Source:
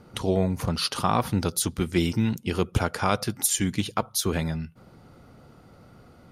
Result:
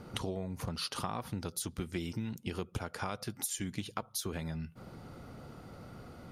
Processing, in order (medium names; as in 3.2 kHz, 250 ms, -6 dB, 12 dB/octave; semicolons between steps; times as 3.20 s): compression 6:1, threshold -37 dBFS, peak gain reduction 18.5 dB; trim +2 dB